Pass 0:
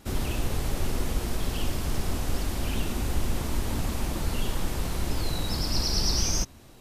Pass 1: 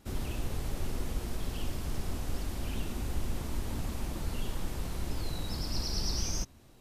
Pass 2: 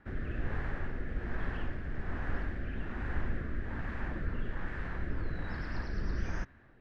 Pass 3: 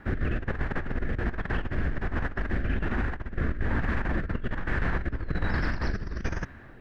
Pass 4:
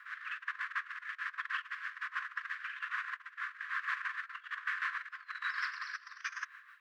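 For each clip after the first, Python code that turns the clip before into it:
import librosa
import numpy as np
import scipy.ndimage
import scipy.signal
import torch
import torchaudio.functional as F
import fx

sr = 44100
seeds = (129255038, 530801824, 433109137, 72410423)

y1 = fx.low_shelf(x, sr, hz=370.0, db=2.5)
y1 = y1 * 10.0 ** (-8.5 / 20.0)
y2 = fx.rotary(y1, sr, hz=1.2)
y2 = fx.lowpass_res(y2, sr, hz=1700.0, q=5.6)
y3 = fx.over_compress(y2, sr, threshold_db=-36.0, ratio=-0.5)
y3 = y3 * 10.0 ** (9.0 / 20.0)
y4 = y3 * (1.0 - 0.65 / 2.0 + 0.65 / 2.0 * np.cos(2.0 * np.pi * 6.4 * (np.arange(len(y3)) / sr)))
y4 = fx.brickwall_highpass(y4, sr, low_hz=1000.0)
y4 = y4 * 10.0 ** (1.5 / 20.0)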